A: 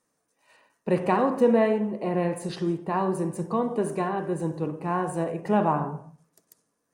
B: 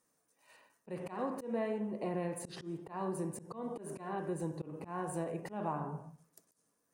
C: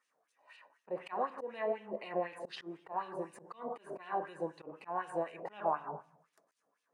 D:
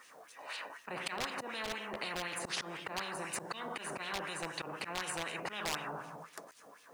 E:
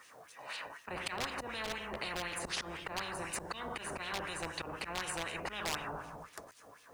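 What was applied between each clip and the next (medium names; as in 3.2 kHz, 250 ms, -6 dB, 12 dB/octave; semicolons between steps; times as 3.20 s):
compression 2.5:1, threshold -32 dBFS, peak gain reduction 11.5 dB; slow attack 148 ms; treble shelf 9.7 kHz +9 dB; trim -4 dB
LFO band-pass sine 4 Hz 590–3100 Hz; trim +9.5 dB
hard clipper -27.5 dBFS, distortion -17 dB; spectrum-flattening compressor 4:1; trim +9 dB
octave divider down 2 oct, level -5 dB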